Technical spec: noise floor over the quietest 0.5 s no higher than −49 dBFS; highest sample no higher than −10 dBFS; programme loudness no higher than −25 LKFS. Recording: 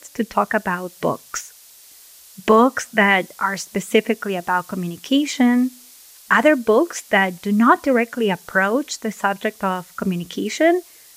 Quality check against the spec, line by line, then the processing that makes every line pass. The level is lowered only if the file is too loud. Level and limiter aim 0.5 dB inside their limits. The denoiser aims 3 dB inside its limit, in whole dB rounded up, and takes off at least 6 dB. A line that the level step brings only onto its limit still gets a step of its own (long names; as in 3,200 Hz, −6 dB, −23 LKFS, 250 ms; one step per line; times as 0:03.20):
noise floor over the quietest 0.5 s −46 dBFS: out of spec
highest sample −2.5 dBFS: out of spec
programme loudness −19.5 LKFS: out of spec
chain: level −6 dB
brickwall limiter −10.5 dBFS